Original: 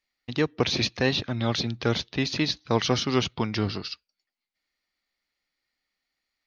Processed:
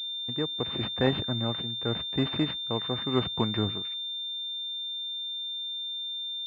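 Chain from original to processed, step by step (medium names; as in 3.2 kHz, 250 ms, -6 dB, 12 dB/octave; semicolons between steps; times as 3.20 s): tremolo 0.88 Hz, depth 63%; class-D stage that switches slowly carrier 3.6 kHz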